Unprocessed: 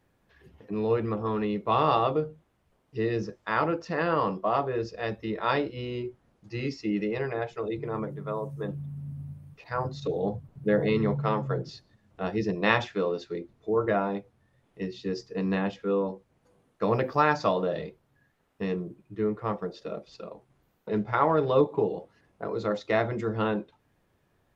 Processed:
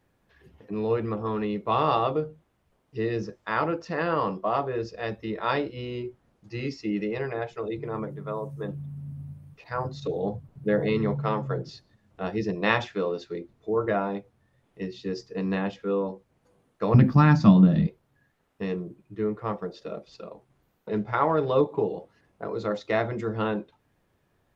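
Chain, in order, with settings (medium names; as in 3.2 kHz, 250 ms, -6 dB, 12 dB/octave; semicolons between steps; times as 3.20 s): 16.94–17.87 s: resonant low shelf 320 Hz +13.5 dB, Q 3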